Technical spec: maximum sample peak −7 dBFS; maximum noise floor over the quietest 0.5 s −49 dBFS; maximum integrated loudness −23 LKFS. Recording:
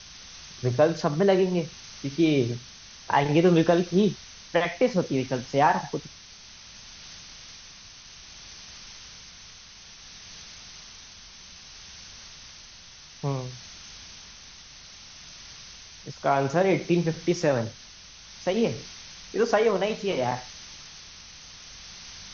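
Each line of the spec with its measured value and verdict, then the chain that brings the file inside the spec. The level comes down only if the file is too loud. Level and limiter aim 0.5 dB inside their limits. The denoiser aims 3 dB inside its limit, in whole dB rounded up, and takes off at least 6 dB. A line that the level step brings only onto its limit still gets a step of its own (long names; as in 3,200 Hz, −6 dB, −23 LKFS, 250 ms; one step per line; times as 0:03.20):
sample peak −8.5 dBFS: in spec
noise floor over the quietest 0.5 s −48 dBFS: out of spec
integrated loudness −25.0 LKFS: in spec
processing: broadband denoise 6 dB, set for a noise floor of −48 dBFS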